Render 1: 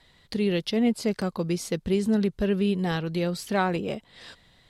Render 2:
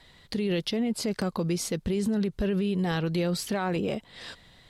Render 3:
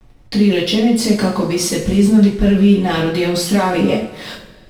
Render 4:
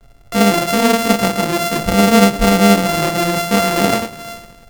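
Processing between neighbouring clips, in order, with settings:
brickwall limiter −23.5 dBFS, peak gain reduction 11.5 dB; level +3.5 dB
slack as between gear wheels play −43 dBFS; coupled-rooms reverb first 0.4 s, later 1.8 s, from −18 dB, DRR −7 dB; level +6 dB
samples sorted by size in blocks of 64 samples

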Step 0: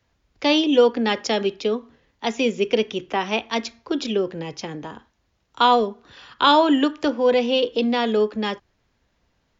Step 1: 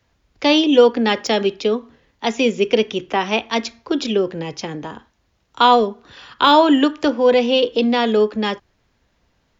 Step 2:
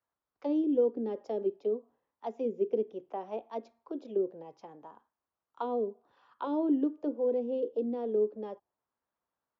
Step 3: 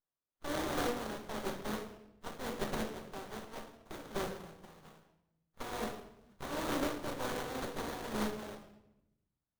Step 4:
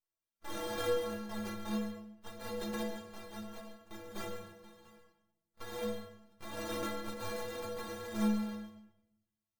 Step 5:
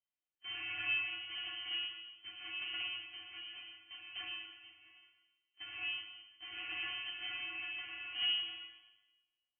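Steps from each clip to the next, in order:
de-essing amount 50%; level +4 dB
parametric band 2,000 Hz −12 dB 2.5 octaves; envelope filter 370–1,200 Hz, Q 2.1, down, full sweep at −15 dBFS; level −8.5 dB
compressing power law on the bin magnitudes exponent 0.19; rectangular room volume 270 cubic metres, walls mixed, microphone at 1.1 metres; windowed peak hold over 17 samples; level −6.5 dB
stiff-string resonator 100 Hz, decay 0.62 s, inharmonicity 0.03; reverb whose tail is shaped and stops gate 170 ms rising, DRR 9.5 dB; level +10 dB
voice inversion scrambler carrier 3,100 Hz; mains-hum notches 50/100 Hz; four-comb reverb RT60 0.99 s, combs from 33 ms, DRR 4.5 dB; level −5 dB

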